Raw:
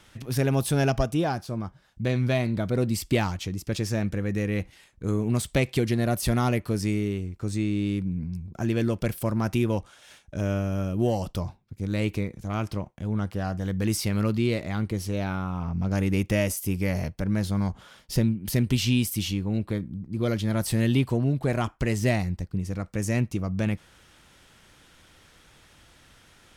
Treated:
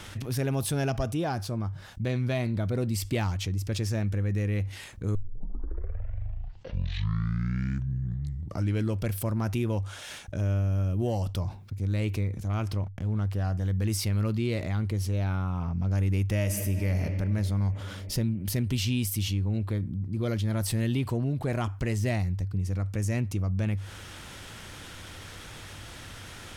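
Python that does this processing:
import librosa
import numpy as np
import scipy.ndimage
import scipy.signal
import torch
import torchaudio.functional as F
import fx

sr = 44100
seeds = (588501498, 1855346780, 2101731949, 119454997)

y = fx.backlash(x, sr, play_db=-46.5, at=(12.83, 13.32))
y = fx.reverb_throw(y, sr, start_s=16.39, length_s=0.57, rt60_s=3.0, drr_db=5.0)
y = fx.edit(y, sr, fx.tape_start(start_s=5.15, length_s=3.92), tone=tone)
y = fx.peak_eq(y, sr, hz=98.0, db=11.0, octaves=0.24)
y = fx.env_flatten(y, sr, amount_pct=50)
y = y * librosa.db_to_amplitude(-8.0)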